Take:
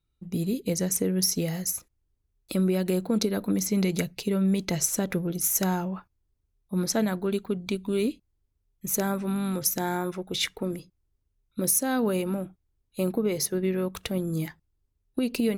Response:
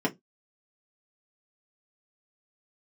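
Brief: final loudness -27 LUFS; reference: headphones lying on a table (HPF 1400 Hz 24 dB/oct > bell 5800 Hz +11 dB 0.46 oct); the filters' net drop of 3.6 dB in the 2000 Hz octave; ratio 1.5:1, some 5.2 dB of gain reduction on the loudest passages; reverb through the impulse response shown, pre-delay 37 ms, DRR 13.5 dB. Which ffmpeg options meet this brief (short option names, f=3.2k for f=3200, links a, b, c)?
-filter_complex "[0:a]equalizer=f=2k:t=o:g=-4,acompressor=threshold=-35dB:ratio=1.5,asplit=2[a][b];[1:a]atrim=start_sample=2205,adelay=37[c];[b][c]afir=irnorm=-1:irlink=0,volume=-23.5dB[d];[a][d]amix=inputs=2:normalize=0,highpass=f=1.4k:w=0.5412,highpass=f=1.4k:w=1.3066,equalizer=f=5.8k:t=o:w=0.46:g=11,volume=2.5dB"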